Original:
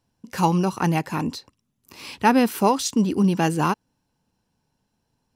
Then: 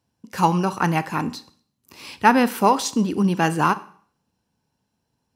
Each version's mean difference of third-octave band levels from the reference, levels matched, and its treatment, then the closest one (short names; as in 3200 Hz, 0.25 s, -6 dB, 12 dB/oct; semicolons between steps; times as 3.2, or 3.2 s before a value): 2.5 dB: HPF 50 Hz; dynamic EQ 1400 Hz, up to +7 dB, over -35 dBFS, Q 0.86; Schroeder reverb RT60 0.52 s, combs from 29 ms, DRR 15 dB; gain -1 dB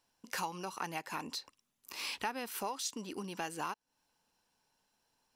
7.5 dB: low shelf 490 Hz -10 dB; compressor 5:1, threshold -37 dBFS, peak gain reduction 19.5 dB; bell 110 Hz -10 dB 2.5 oct; gain +1.5 dB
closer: first